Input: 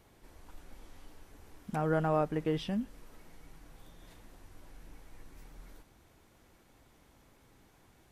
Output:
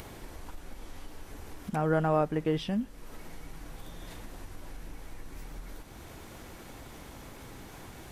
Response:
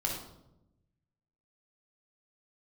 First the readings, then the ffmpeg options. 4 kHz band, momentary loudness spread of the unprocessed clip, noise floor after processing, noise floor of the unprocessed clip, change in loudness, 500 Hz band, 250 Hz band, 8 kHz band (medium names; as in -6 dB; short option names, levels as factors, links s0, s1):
+4.5 dB, 13 LU, -48 dBFS, -64 dBFS, +1.0 dB, +3.0 dB, +3.0 dB, +9.0 dB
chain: -af "acompressor=mode=upward:threshold=0.0158:ratio=2.5,volume=1.41"